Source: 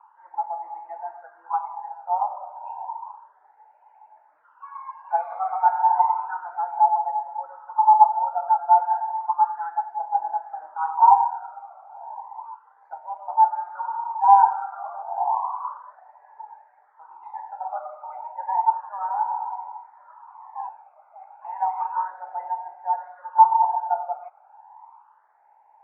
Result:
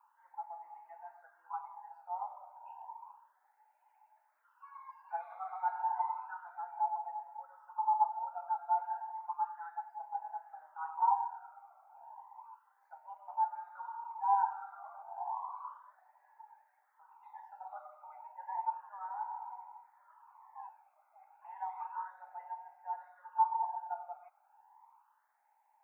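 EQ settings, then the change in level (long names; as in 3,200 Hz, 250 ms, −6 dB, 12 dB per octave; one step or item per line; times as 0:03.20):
first difference
+2.5 dB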